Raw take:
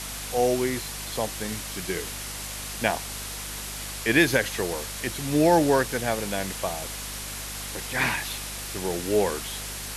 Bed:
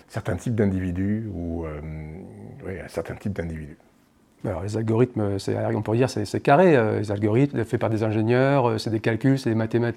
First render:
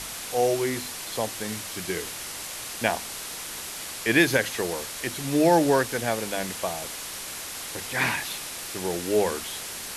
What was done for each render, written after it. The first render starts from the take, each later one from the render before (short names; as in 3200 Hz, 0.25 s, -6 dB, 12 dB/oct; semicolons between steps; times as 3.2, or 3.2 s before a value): notches 50/100/150/200/250 Hz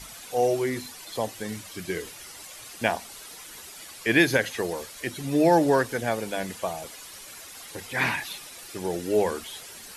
denoiser 11 dB, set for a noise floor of -36 dBFS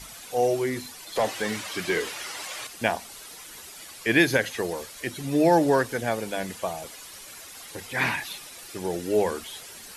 1.16–2.67 overdrive pedal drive 19 dB, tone 2800 Hz, clips at -13.5 dBFS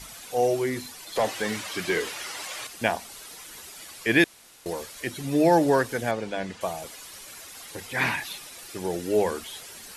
4.24–4.66 room tone; 6.11–6.61 air absorption 100 m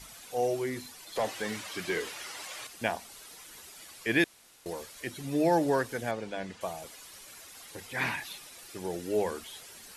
gain -6 dB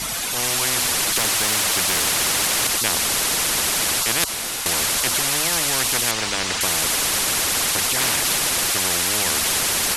AGC gain up to 10 dB; spectral compressor 10:1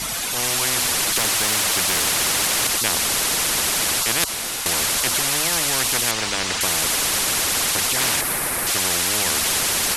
8.21–8.67 band shelf 4500 Hz -9 dB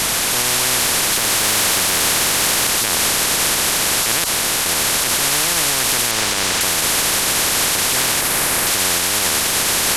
per-bin compression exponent 0.4; limiter -7 dBFS, peak gain reduction 5 dB